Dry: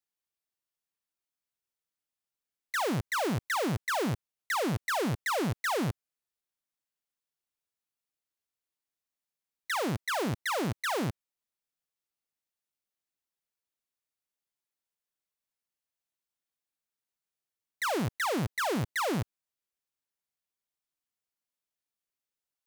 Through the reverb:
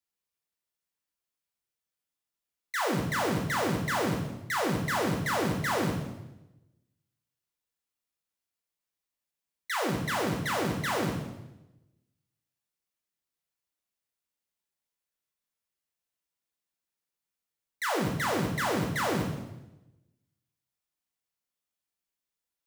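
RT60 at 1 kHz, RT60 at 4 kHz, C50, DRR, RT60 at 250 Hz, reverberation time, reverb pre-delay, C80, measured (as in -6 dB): 0.90 s, 0.85 s, 4.5 dB, 0.0 dB, 1.1 s, 1.0 s, 7 ms, 8.0 dB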